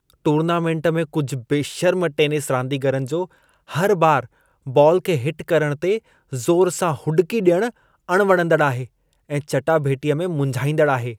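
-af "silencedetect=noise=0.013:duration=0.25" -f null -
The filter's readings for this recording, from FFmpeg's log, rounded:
silence_start: 3.26
silence_end: 3.69 | silence_duration: 0.43
silence_start: 4.26
silence_end: 4.66 | silence_duration: 0.41
silence_start: 5.99
silence_end: 6.32 | silence_duration: 0.34
silence_start: 7.70
silence_end: 8.09 | silence_duration: 0.38
silence_start: 8.86
silence_end: 9.29 | silence_duration: 0.43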